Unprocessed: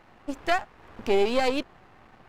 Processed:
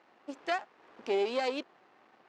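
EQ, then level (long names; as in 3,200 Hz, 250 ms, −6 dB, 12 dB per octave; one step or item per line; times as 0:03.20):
Chebyshev band-pass filter 330–6,000 Hz, order 2
−6.5 dB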